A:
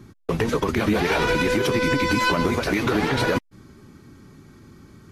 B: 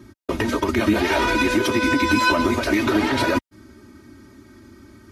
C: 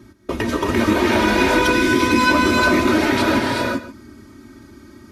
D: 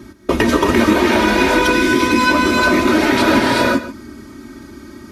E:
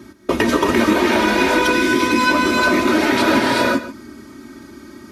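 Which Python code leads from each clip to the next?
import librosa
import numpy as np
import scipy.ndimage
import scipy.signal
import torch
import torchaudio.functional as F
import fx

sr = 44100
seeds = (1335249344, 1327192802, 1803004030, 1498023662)

y1 = scipy.signal.sosfilt(scipy.signal.butter(2, 50.0, 'highpass', fs=sr, output='sos'), x)
y1 = y1 + 0.81 * np.pad(y1, (int(3.2 * sr / 1000.0), 0))[:len(y1)]
y2 = y1 + 10.0 ** (-14.5 / 20.0) * np.pad(y1, (int(137 * sr / 1000.0), 0))[:len(y1)]
y2 = fx.rev_gated(y2, sr, seeds[0], gate_ms=420, shape='rising', drr_db=-0.5)
y3 = fx.peak_eq(y2, sr, hz=100.0, db=-7.0, octaves=0.5)
y3 = fx.rider(y3, sr, range_db=5, speed_s=0.5)
y3 = F.gain(torch.from_numpy(y3), 3.5).numpy()
y4 = fx.low_shelf(y3, sr, hz=78.0, db=-11.5)
y4 = F.gain(torch.from_numpy(y4), -1.5).numpy()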